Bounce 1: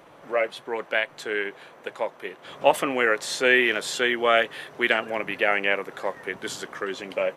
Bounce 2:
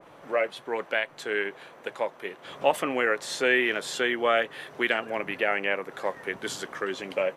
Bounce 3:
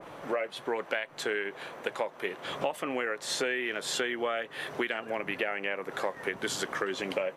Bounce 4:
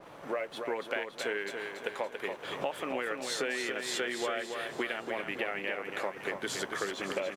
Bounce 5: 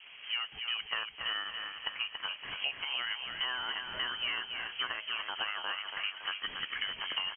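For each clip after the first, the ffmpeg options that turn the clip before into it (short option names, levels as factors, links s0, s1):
-filter_complex "[0:a]asplit=2[s0][s1];[s1]alimiter=limit=0.178:level=0:latency=1:release=415,volume=1[s2];[s0][s2]amix=inputs=2:normalize=0,adynamicequalizer=threshold=0.0398:dfrequency=2100:dqfactor=0.7:tfrequency=2100:tqfactor=0.7:attack=5:release=100:ratio=0.375:range=2:mode=cutabove:tftype=highshelf,volume=0.473"
-af "acompressor=threshold=0.0224:ratio=12,volume=1.88"
-filter_complex "[0:a]aeval=exprs='sgn(val(0))*max(abs(val(0))-0.00112,0)':c=same,asplit=2[s0][s1];[s1]aecho=0:1:282|564|846|1128|1410|1692:0.501|0.241|0.115|0.0554|0.0266|0.0128[s2];[s0][s2]amix=inputs=2:normalize=0,volume=0.708"
-af "lowpass=f=2900:t=q:w=0.5098,lowpass=f=2900:t=q:w=0.6013,lowpass=f=2900:t=q:w=0.9,lowpass=f=2900:t=q:w=2.563,afreqshift=-3400,volume=0.841"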